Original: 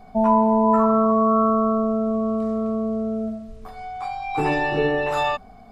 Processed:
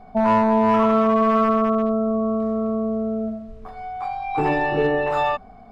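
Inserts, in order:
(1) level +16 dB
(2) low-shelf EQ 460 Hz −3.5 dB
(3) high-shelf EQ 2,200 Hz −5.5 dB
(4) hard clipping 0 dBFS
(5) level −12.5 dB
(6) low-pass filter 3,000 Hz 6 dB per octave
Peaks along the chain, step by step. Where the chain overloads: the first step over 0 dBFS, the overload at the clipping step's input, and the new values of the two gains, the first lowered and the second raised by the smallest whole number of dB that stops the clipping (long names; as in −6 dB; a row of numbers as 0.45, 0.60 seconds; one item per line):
+9.0, +7.5, +7.0, 0.0, −12.5, −12.5 dBFS
step 1, 7.0 dB
step 1 +9 dB, step 5 −5.5 dB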